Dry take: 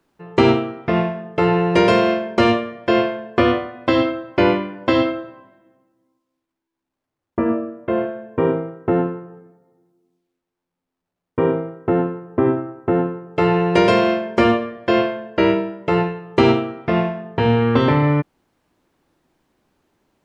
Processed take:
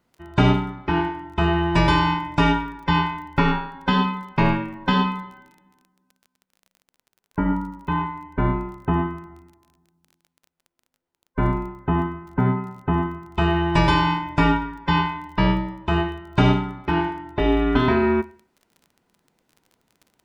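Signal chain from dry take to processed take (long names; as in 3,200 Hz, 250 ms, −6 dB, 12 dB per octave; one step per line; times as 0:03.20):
frequency inversion band by band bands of 500 Hz
four-comb reverb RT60 0.45 s, combs from 25 ms, DRR 16.5 dB
surface crackle 23 per second −36 dBFS
level −3 dB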